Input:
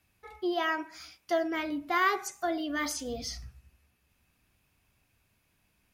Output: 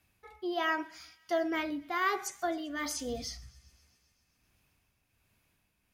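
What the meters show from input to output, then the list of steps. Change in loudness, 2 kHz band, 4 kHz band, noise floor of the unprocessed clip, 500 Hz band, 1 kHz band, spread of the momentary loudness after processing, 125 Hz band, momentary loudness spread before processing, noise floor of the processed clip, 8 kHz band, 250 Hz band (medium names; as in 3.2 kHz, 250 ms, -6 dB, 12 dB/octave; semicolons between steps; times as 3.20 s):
-2.5 dB, -2.5 dB, -2.5 dB, -73 dBFS, -2.0 dB, -3.0 dB, 11 LU, -2.5 dB, 12 LU, -76 dBFS, -1.0 dB, -2.5 dB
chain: tremolo 1.3 Hz, depth 48%; feedback echo behind a high-pass 131 ms, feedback 74%, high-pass 2.2 kHz, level -23 dB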